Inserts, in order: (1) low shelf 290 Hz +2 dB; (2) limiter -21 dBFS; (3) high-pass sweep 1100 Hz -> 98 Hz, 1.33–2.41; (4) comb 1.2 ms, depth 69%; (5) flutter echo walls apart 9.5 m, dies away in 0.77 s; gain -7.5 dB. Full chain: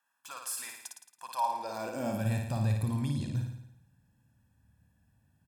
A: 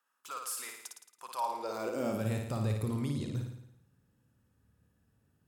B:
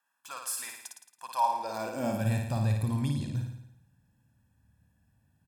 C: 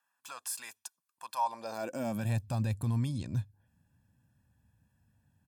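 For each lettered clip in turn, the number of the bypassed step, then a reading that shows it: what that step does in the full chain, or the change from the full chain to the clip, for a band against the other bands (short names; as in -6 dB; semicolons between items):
4, 500 Hz band +4.0 dB; 2, crest factor change +1.5 dB; 5, echo-to-direct -2.5 dB to none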